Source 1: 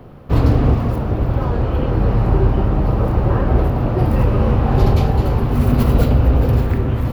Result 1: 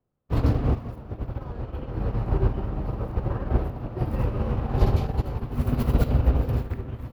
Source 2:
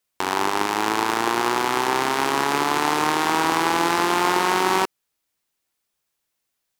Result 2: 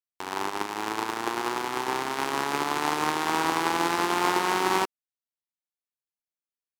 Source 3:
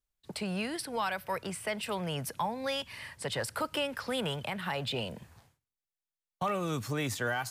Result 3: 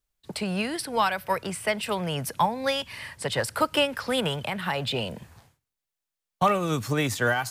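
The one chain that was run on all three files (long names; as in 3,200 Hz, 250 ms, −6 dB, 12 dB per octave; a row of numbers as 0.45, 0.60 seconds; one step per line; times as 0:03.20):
expander for the loud parts 2.5 to 1, over −33 dBFS
loudness normalisation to −27 LKFS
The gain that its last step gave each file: −4.0, −2.0, +11.5 decibels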